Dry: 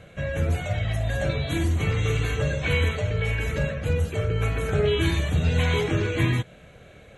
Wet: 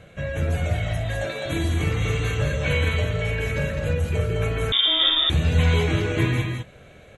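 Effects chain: 1.03–1.45 HPF 190 Hz -> 460 Hz 12 dB/oct; tapped delay 0.169/0.207 s -10.5/-5.5 dB; 4.72–5.3 inverted band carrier 3600 Hz

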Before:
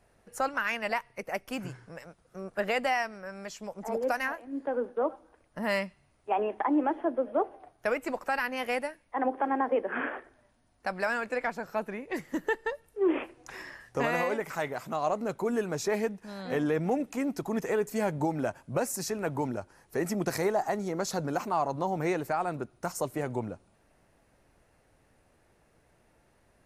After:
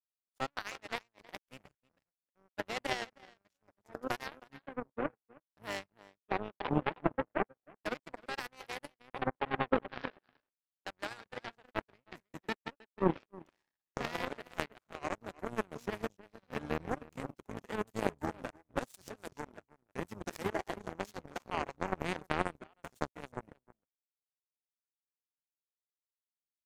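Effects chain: outdoor echo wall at 54 m, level -7 dB; harmoniser -12 st -6 dB, -5 st -16 dB; power-law curve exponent 3; gain +3.5 dB

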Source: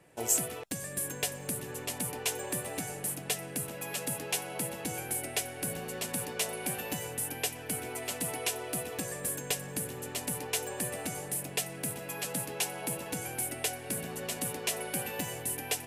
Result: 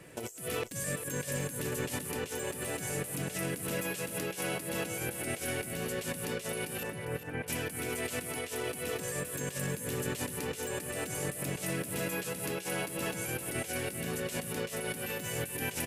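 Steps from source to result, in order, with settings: bell 790 Hz -8.5 dB 0.59 oct; negative-ratio compressor -43 dBFS, ratio -1; 6.83–7.48 LPF 2200 Hz 24 dB/oct; feedback echo 0.401 s, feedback 30%, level -10 dB; gain +5 dB

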